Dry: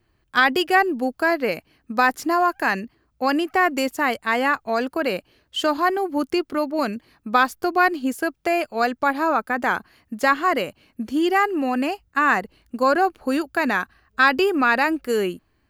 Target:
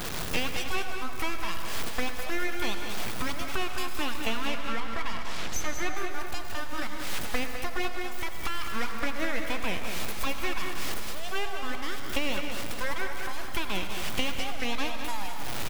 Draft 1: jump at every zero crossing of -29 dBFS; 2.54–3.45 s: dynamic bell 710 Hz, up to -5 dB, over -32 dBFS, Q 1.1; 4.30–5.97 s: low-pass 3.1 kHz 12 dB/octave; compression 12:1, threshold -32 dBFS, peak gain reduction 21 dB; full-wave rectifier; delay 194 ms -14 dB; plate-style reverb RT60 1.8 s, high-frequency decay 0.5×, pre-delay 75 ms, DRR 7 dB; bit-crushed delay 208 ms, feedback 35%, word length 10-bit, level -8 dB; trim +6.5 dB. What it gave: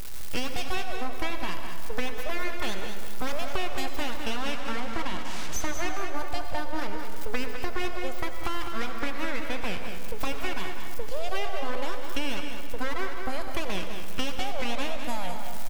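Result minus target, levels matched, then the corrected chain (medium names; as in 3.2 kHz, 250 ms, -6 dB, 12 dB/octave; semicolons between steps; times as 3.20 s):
500 Hz band +3.0 dB
jump at every zero crossing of -29 dBFS; 2.54–3.45 s: dynamic bell 710 Hz, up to -5 dB, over -32 dBFS, Q 1.1; 4.30–5.97 s: low-pass 3.1 kHz 12 dB/octave; compression 12:1, threshold -32 dBFS, peak gain reduction 21 dB; high-pass 420 Hz 24 dB/octave; full-wave rectifier; delay 194 ms -14 dB; plate-style reverb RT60 1.8 s, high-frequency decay 0.5×, pre-delay 75 ms, DRR 7 dB; bit-crushed delay 208 ms, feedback 35%, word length 10-bit, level -8 dB; trim +6.5 dB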